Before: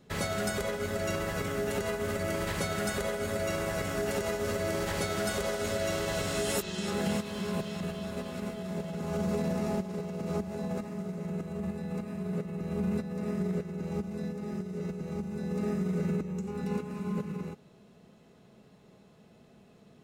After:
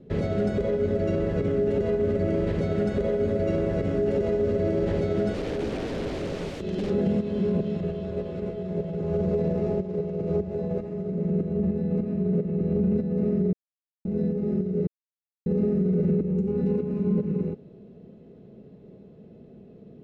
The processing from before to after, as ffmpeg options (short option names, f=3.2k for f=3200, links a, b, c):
-filter_complex "[0:a]asettb=1/sr,asplit=3[a][b][c];[a]atrim=end=5.344[d];[b]atrim=start=5.34:end=6.9,asetpts=PTS-STARTPTS,afade=t=in:d=0.004:c=qsin,afade=t=out:st=1.556:d=0.004:c=qsin,aeval=exprs='(mod(25.1*val(0)+1,2)-1)/25.1':c=same[e];[c]atrim=start=6.896[f];[d][e]acrossfade=d=0.004:c1=hsin:c2=qsin[g];[g][f]acrossfade=d=0.004:c1=qsin:c2=hsin,asettb=1/sr,asplit=3[h][i][j];[h]atrim=end=7.774[k];[i]atrim=start=7.77:end=11.12,asetpts=PTS-STARTPTS,afade=t=in:d=0.004:c=qsin,afade=t=out:st=3.346:d=0.004:c=qsin,equalizer=f=230:w=3.3:g=-14.5[l];[j]atrim=start=11.116[m];[k][l]acrossfade=d=0.004:c1=hsin:c2=qsin[n];[n][m]acrossfade=d=0.004:c1=qsin:c2=hsin,asplit=5[o][p][q][r][s];[o]atrim=end=13.53,asetpts=PTS-STARTPTS,afade=t=out:st=13.526:d=0.004:c=hsin[t];[p]atrim=start=13.53:end=14.05,asetpts=PTS-STARTPTS,volume=0[u];[q]atrim=start=14.05:end=14.87,asetpts=PTS-STARTPTS,afade=t=in:d=0.004:c=hsin,afade=t=out:st=0.816:d=0.004:c=hsin[v];[r]atrim=start=14.87:end=15.46,asetpts=PTS-STARTPTS,volume=0[w];[s]atrim=start=15.46,asetpts=PTS-STARTPTS,afade=t=in:d=0.004:c=hsin[x];[t][u][v][w][x]concat=n=5:v=0:a=1,lowpass=3.4k,lowshelf=f=670:t=q:w=1.5:g=13,alimiter=limit=-12.5dB:level=0:latency=1:release=42,volume=-4dB"